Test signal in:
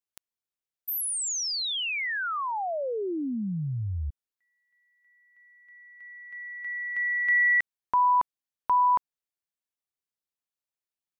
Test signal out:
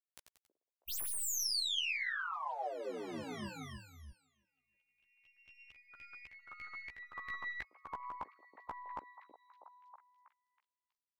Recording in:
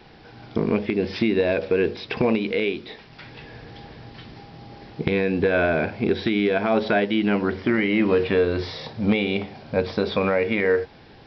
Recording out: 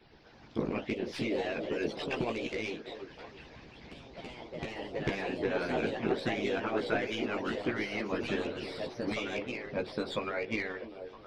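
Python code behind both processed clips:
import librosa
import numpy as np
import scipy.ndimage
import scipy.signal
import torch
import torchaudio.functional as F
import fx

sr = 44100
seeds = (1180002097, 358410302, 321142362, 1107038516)

p1 = fx.tracing_dist(x, sr, depth_ms=0.041)
p2 = fx.chorus_voices(p1, sr, voices=4, hz=0.21, base_ms=16, depth_ms=2.7, mix_pct=45)
p3 = p2 + fx.echo_stepped(p2, sr, ms=322, hz=360.0, octaves=0.7, feedback_pct=70, wet_db=-7, dry=0)
p4 = fx.echo_pitch(p3, sr, ms=109, semitones=2, count=3, db_per_echo=-6.0)
p5 = fx.hpss(p4, sr, part='harmonic', gain_db=-17)
y = p5 * librosa.db_to_amplitude(-3.5)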